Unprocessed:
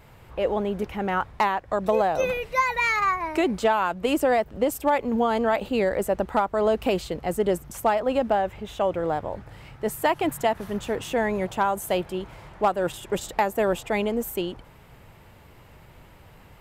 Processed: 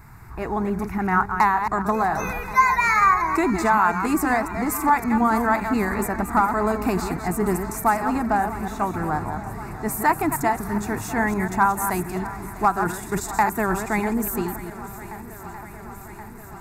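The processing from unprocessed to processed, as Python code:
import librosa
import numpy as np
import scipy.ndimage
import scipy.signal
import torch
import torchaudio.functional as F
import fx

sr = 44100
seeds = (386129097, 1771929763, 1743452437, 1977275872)

y = fx.reverse_delay(x, sr, ms=140, wet_db=-7.5)
y = fx.fixed_phaser(y, sr, hz=1300.0, stages=4)
y = fx.echo_swing(y, sr, ms=1077, ratio=1.5, feedback_pct=67, wet_db=-17)
y = y * 10.0 ** (7.0 / 20.0)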